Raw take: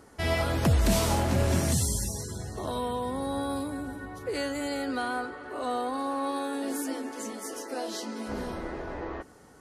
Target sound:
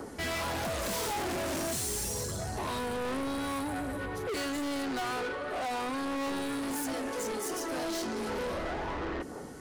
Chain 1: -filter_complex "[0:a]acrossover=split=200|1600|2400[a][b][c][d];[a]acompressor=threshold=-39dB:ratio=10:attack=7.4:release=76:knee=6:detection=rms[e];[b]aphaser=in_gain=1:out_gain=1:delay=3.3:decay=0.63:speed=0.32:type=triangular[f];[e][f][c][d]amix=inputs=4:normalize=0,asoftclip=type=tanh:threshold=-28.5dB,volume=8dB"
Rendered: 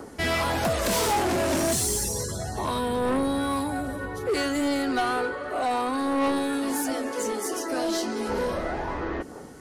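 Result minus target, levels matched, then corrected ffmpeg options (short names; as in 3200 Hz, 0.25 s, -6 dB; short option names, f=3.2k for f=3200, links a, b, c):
soft clip: distortion -6 dB
-filter_complex "[0:a]acrossover=split=200|1600|2400[a][b][c][d];[a]acompressor=threshold=-39dB:ratio=10:attack=7.4:release=76:knee=6:detection=rms[e];[b]aphaser=in_gain=1:out_gain=1:delay=3.3:decay=0.63:speed=0.32:type=triangular[f];[e][f][c][d]amix=inputs=4:normalize=0,asoftclip=type=tanh:threshold=-40dB,volume=8dB"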